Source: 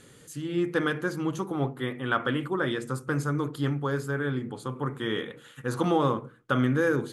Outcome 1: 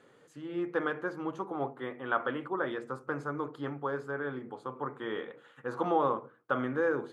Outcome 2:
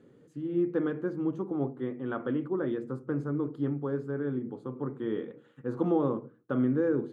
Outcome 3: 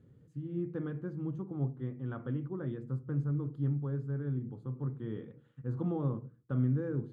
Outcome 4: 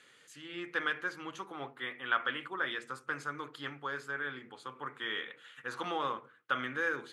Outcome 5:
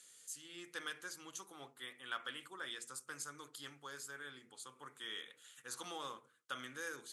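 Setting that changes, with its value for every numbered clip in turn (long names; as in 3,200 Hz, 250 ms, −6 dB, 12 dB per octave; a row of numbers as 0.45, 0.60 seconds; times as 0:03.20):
resonant band-pass, frequency: 790, 310, 100, 2,200, 7,600 Hertz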